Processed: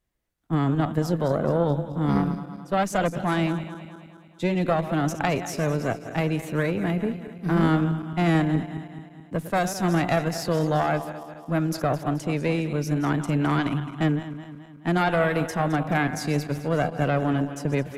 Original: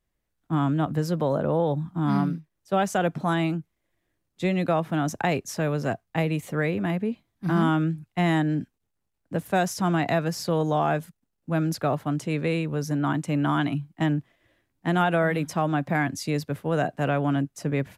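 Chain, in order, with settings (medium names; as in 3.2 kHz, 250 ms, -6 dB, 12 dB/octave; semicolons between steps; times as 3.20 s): backward echo that repeats 107 ms, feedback 72%, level -12 dB; Chebyshev shaper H 2 -8 dB, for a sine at -10.5 dBFS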